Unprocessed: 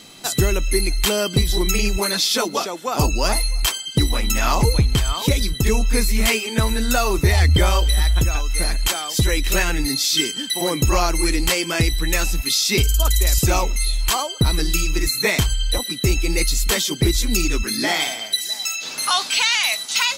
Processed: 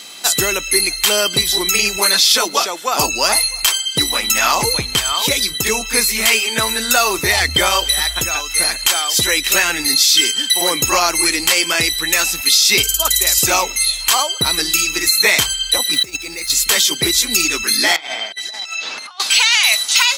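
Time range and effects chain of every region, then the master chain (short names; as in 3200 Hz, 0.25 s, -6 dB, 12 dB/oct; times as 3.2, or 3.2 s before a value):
15.93–16.5 median filter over 3 samples + notch 3000 Hz, Q 9.3 + negative-ratio compressor -24 dBFS, ratio -0.5
17.96–19.2 negative-ratio compressor -27 dBFS, ratio -0.5 + tape spacing loss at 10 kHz 22 dB
whole clip: HPF 1100 Hz 6 dB/oct; maximiser +10.5 dB; gain -1 dB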